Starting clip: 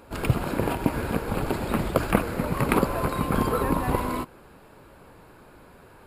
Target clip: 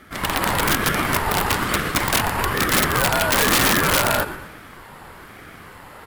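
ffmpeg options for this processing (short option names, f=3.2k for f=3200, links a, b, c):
-filter_complex "[0:a]highpass=f=430:w=0.5412,highpass=f=430:w=1.3066,asplit=2[a][b];[b]asplit=4[c][d][e][f];[c]adelay=118,afreqshift=-110,volume=-12.5dB[g];[d]adelay=236,afreqshift=-220,volume=-19.6dB[h];[e]adelay=354,afreqshift=-330,volume=-26.8dB[i];[f]adelay=472,afreqshift=-440,volume=-33.9dB[j];[g][h][i][j]amix=inputs=4:normalize=0[k];[a][k]amix=inputs=2:normalize=0,dynaudnorm=f=110:g=5:m=6.5dB,aeval=exprs='(mod(6.68*val(0)+1,2)-1)/6.68':c=same,aeval=exprs='val(0)*sin(2*PI*580*n/s+580*0.35/1.1*sin(2*PI*1.1*n/s))':c=same,volume=8.5dB"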